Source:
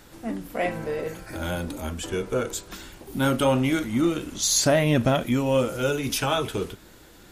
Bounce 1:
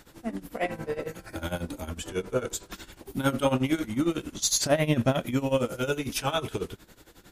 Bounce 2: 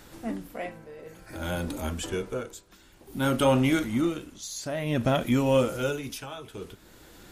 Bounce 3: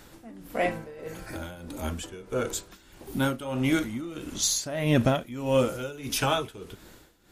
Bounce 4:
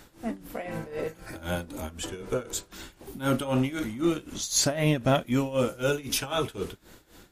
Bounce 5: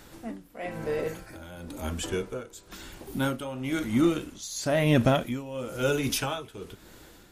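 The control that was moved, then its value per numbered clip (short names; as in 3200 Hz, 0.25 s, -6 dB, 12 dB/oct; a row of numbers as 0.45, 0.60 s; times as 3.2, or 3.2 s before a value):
tremolo, rate: 11, 0.55, 1.6, 3.9, 1 Hz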